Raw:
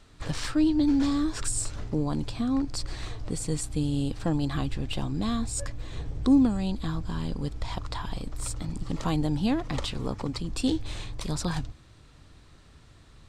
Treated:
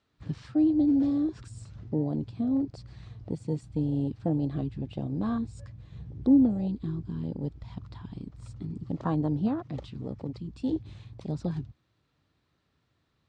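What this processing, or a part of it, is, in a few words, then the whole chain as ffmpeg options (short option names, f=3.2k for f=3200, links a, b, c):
over-cleaned archive recording: -filter_complex "[0:a]highpass=100,lowpass=5.1k,afwtdn=0.0316,asettb=1/sr,asplit=3[a][b][c];[a]atrim=end=9.484[d];[b]atrim=start=9.48:end=10.73,asetpts=PTS-STARTPTS,afade=t=in:d=0.004:c=qsin,afade=t=out:st=1.246:d=0.004:c=qsin,equalizer=f=450:t=o:w=2.9:g=-4.5[e];[c]atrim=start=10.726[f];[d][e]acrossfade=d=0.004:c1=hsin:c2=qsin[g];[g][f]acrossfade=d=0.004:c1=qsin:c2=hsin"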